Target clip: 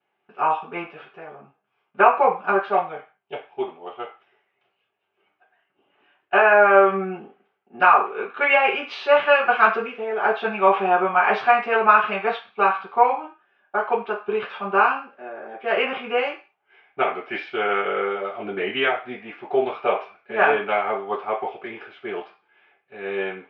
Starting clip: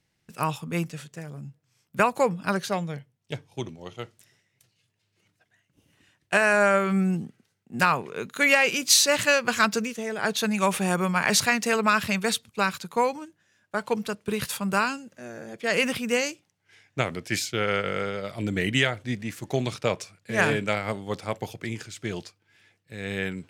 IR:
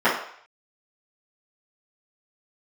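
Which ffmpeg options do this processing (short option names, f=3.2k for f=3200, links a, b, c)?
-filter_complex "[0:a]highpass=130,equalizer=f=250:t=q:w=4:g=-5,equalizer=f=420:t=q:w=4:g=4,equalizer=f=770:t=q:w=4:g=10,equalizer=f=1.2k:t=q:w=4:g=5,equalizer=f=1.9k:t=q:w=4:g=-7,lowpass=f=2.7k:w=0.5412,lowpass=f=2.7k:w=1.3066[a];[1:a]atrim=start_sample=2205,asetrate=74970,aresample=44100[b];[a][b]afir=irnorm=-1:irlink=0,volume=-13dB"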